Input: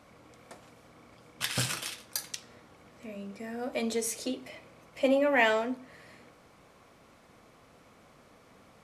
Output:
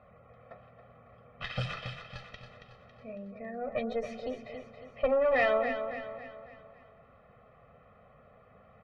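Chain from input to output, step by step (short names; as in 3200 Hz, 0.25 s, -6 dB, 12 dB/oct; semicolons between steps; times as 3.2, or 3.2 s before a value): spectral gate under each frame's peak -25 dB strong; tube stage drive 23 dB, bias 0.55; comb 1.6 ms, depth 96%; low-pass opened by the level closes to 2500 Hz, open at -22.5 dBFS; air absorption 320 m; on a send: feedback echo 0.276 s, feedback 46%, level -8.5 dB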